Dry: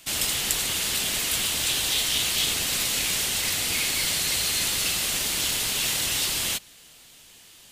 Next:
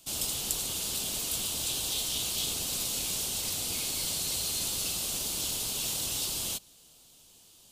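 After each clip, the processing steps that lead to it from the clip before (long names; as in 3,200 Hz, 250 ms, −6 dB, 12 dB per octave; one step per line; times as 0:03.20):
parametric band 1,900 Hz −15 dB 0.95 octaves
level −5 dB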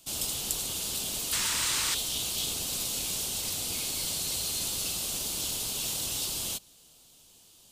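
sound drawn into the spectrogram noise, 0:01.32–0:01.95, 860–9,400 Hz −31 dBFS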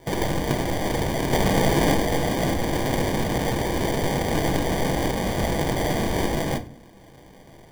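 decimation without filtering 33×
on a send at −8 dB: convolution reverb RT60 0.45 s, pre-delay 6 ms
on the sum: level +8 dB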